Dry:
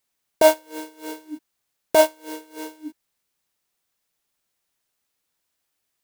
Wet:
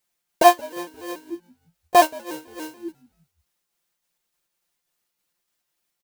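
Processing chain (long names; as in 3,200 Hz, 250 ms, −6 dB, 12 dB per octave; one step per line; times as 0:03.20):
pitch shifter gated in a rhythm +2 semitones, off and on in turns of 144 ms
comb filter 5.7 ms
echo with shifted repeats 175 ms, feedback 43%, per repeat −87 Hz, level −23 dB
level −1 dB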